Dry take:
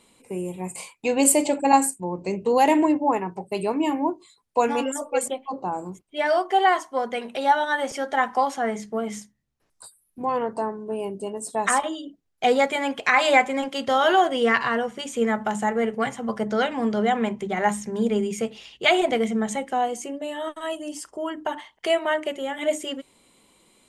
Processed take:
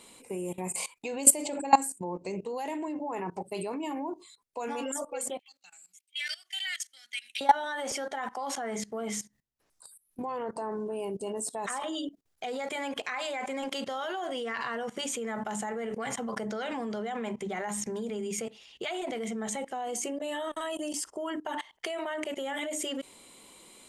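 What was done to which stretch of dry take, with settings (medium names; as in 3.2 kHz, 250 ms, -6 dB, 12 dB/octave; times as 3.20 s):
5.39–7.41 s: inverse Chebyshev high-pass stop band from 1.1 kHz
whole clip: compression 2.5:1, threshold -22 dBFS; tone controls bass -5 dB, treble +3 dB; level held to a coarse grid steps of 20 dB; trim +6 dB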